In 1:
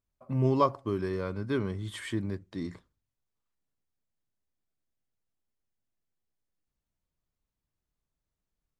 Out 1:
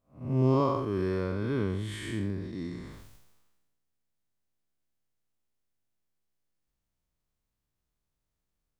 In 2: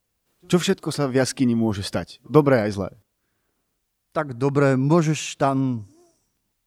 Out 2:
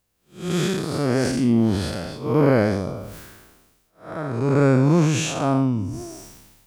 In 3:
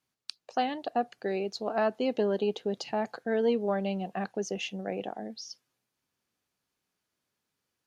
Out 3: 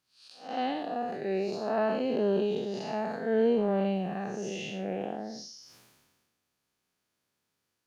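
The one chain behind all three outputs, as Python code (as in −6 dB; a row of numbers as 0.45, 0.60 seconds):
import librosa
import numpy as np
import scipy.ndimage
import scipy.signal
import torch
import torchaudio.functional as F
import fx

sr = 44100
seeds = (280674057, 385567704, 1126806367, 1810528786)

y = fx.spec_blur(x, sr, span_ms=202.0)
y = fx.sustainer(y, sr, db_per_s=39.0)
y = y * librosa.db_to_amplitude(3.5)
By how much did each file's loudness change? +1.0, +0.5, +0.5 LU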